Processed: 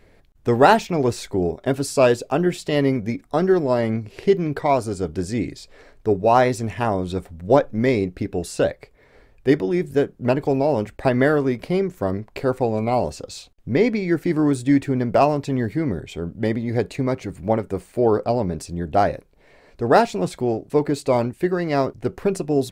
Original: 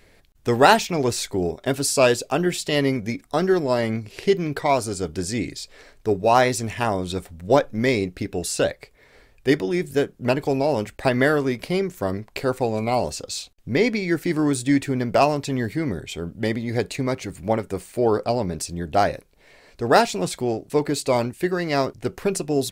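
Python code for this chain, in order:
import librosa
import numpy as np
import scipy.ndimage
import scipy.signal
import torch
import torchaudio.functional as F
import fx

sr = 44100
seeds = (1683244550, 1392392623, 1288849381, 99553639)

y = fx.high_shelf(x, sr, hz=2000.0, db=-10.5)
y = y * librosa.db_to_amplitude(2.5)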